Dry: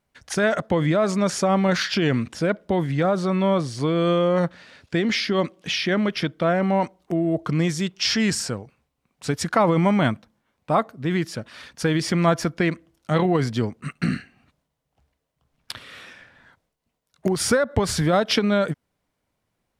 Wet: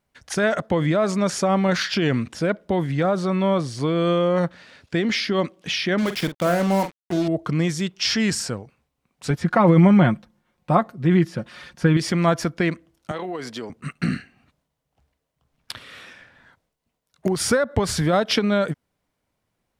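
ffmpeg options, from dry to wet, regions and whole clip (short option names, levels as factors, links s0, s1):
-filter_complex "[0:a]asettb=1/sr,asplit=3[s0][s1][s2];[s0]atrim=end=5.984[s3];[s1]atrim=start=5.98:end=7.28,asetpts=PTS-STARTPTS,afade=t=in:d=0.004:c=qsin,afade=t=out:st=1.296:d=0.004:c=qsin,acrusher=bits=4:mix=0:aa=0.5,asplit=2[s4][s5];[s5]adelay=46,volume=0.299[s6];[s4][s6]amix=inputs=2:normalize=0,atrim=end_sample=57330[s7];[s2]atrim=start=7.276[s8];[s3][s7]acrossfade=d=0.004:c1=hsin:c2=qsin[s9];[s9][s8]acrossfade=d=0.004:c1=qsin:c2=hsin,asettb=1/sr,asplit=3[s10][s11][s12];[s10]atrim=end=9.304[s13];[s11]atrim=start=9.3:end=11.97,asetpts=PTS-STARTPTS,afade=t=in:d=0.004:c=qsin,afade=t=out:st=2.666:d=0.004:c=qsin,acrossover=split=2800[s14][s15];[s15]acompressor=threshold=0.00501:ratio=4:attack=1:release=60[s16];[s14][s16]amix=inputs=2:normalize=0,lowshelf=f=250:g=5.5,aecho=1:1:5.6:0.54,atrim=end_sample=117747[s17];[s12]atrim=start=11.966[s18];[s13][s17]acrossfade=d=0.004:c1=hsin:c2=qsin[s19];[s19][s18]acrossfade=d=0.004:c1=qsin:c2=hsin,asettb=1/sr,asplit=3[s20][s21][s22];[s20]atrim=end=13.114[s23];[s21]atrim=start=13.11:end=13.7,asetpts=PTS-STARTPTS,afade=t=in:d=0.004:c=qsin,afade=t=out:st=0.586:d=0.004:c=qsin,highpass=330,acompressor=threshold=0.0398:ratio=3:attack=3.2:release=140:knee=1:detection=peak[s24];[s22]atrim=start=13.696[s25];[s23][s24]acrossfade=d=0.004:c1=hsin:c2=qsin[s26];[s26][s25]acrossfade=d=0.004:c1=qsin:c2=hsin"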